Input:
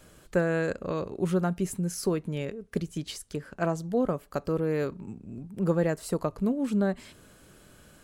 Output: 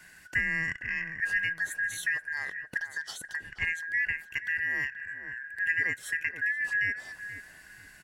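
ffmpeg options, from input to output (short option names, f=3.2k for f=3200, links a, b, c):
-filter_complex "[0:a]afftfilt=real='real(if(lt(b,272),68*(eq(floor(b/68),0)*1+eq(floor(b/68),1)*0+eq(floor(b/68),2)*3+eq(floor(b/68),3)*2)+mod(b,68),b),0)':imag='imag(if(lt(b,272),68*(eq(floor(b/68),0)*1+eq(floor(b/68),1)*0+eq(floor(b/68),2)*3+eq(floor(b/68),3)*2)+mod(b,68),b),0)':win_size=2048:overlap=0.75,asplit=2[a][b];[b]acompressor=threshold=-40dB:ratio=6,volume=-1.5dB[c];[a][c]amix=inputs=2:normalize=0,asplit=2[d][e];[e]adelay=479,lowpass=f=1.1k:p=1,volume=-7.5dB,asplit=2[f][g];[g]adelay=479,lowpass=f=1.1k:p=1,volume=0.42,asplit=2[h][i];[i]adelay=479,lowpass=f=1.1k:p=1,volume=0.42,asplit=2[j][k];[k]adelay=479,lowpass=f=1.1k:p=1,volume=0.42,asplit=2[l][m];[m]adelay=479,lowpass=f=1.1k:p=1,volume=0.42[n];[d][f][h][j][l][n]amix=inputs=6:normalize=0,volume=-4.5dB"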